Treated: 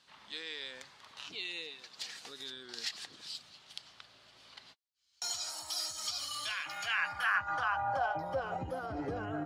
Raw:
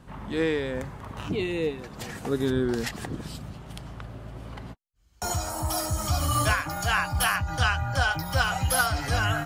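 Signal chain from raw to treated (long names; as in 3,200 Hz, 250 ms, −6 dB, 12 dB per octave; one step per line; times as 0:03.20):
brickwall limiter −20.5 dBFS, peak gain reduction 10.5 dB
band-pass filter sweep 4,300 Hz → 380 Hz, 0:06.30–0:08.66
level +5 dB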